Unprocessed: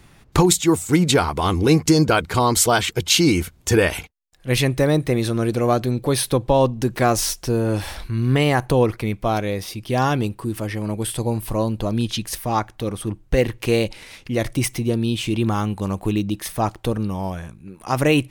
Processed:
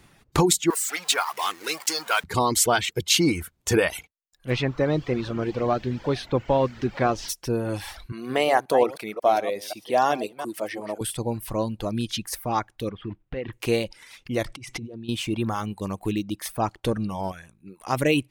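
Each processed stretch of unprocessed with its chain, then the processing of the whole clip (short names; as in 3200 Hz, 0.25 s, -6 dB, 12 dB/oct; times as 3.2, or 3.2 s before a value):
0.7–2.24 zero-crossing step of -20.5 dBFS + HPF 1000 Hz
4.49–7.28 echo 0.443 s -23 dB + added noise pink -34 dBFS + air absorption 190 m
8.12–11.01 reverse delay 0.179 s, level -9 dB + HPF 320 Hz + bell 660 Hz +8.5 dB 0.67 oct
12.9–13.53 block floating point 5-bit + LPF 3200 Hz 24 dB/oct + compressor 12:1, threshold -21 dBFS
14.45–15.09 negative-ratio compressor -30 dBFS + air absorption 74 m
16.72–17.32 LPF 11000 Hz + sample leveller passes 1
whole clip: low shelf 100 Hz -7 dB; reverb removal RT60 0.77 s; gain -3 dB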